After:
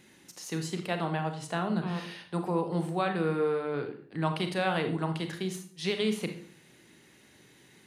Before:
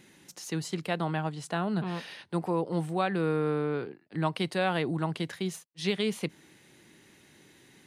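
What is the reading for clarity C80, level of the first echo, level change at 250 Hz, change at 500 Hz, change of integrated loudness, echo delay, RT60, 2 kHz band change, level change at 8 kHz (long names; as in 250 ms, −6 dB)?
14.0 dB, no echo audible, −0.5 dB, 0.0 dB, −0.5 dB, no echo audible, 0.50 s, 0.0 dB, −0.5 dB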